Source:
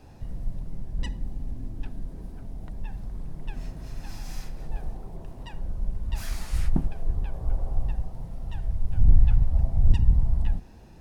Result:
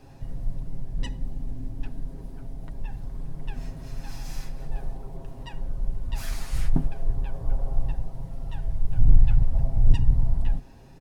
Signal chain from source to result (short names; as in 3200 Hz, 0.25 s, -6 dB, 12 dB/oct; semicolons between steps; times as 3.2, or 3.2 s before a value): comb 7.4 ms, depth 49%